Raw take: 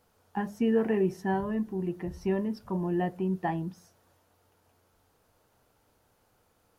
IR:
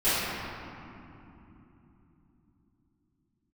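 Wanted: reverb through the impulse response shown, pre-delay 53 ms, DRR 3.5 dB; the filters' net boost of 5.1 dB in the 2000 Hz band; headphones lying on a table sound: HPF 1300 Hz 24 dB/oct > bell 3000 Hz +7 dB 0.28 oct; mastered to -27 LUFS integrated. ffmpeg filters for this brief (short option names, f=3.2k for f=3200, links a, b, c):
-filter_complex "[0:a]equalizer=f=2k:t=o:g=6,asplit=2[a][b];[1:a]atrim=start_sample=2205,adelay=53[c];[b][c]afir=irnorm=-1:irlink=0,volume=-19.5dB[d];[a][d]amix=inputs=2:normalize=0,highpass=f=1.3k:w=0.5412,highpass=f=1.3k:w=1.3066,equalizer=f=3k:t=o:w=0.28:g=7,volume=13.5dB"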